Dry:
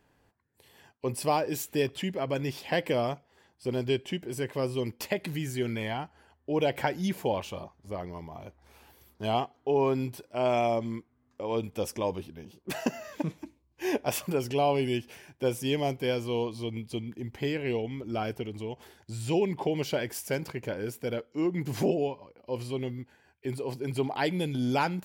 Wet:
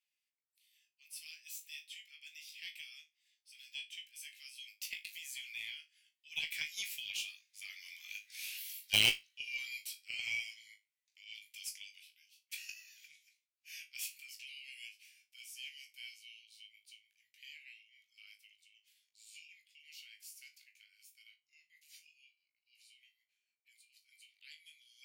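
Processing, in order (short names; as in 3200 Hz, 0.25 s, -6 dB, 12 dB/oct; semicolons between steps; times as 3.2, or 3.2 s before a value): Doppler pass-by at 8.42, 13 m/s, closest 3.6 m; elliptic high-pass 2300 Hz, stop band 60 dB; in parallel at -5.5 dB: bit-crush 7-bit; on the sum: flutter echo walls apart 3.3 m, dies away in 0.21 s; added harmonics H 4 -21 dB, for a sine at -30 dBFS; gain +17.5 dB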